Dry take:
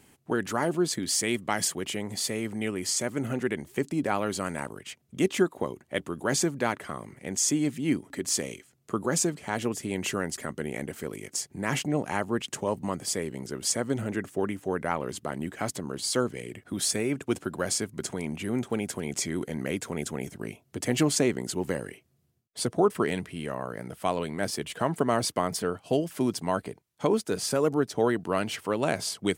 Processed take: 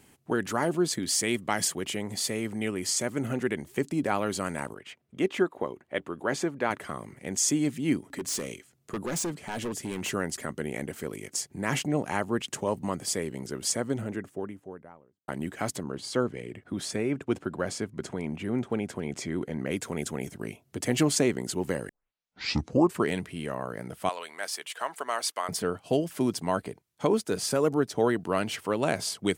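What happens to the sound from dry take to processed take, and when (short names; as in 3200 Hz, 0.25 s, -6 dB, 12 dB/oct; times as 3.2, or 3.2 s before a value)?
4.74–6.71 tone controls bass -7 dB, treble -12 dB
8.13–10.1 hard clip -28 dBFS
13.51–15.28 studio fade out
15.83–19.71 LPF 2300 Hz 6 dB/oct
21.89 tape start 1.13 s
24.09–25.49 HPF 880 Hz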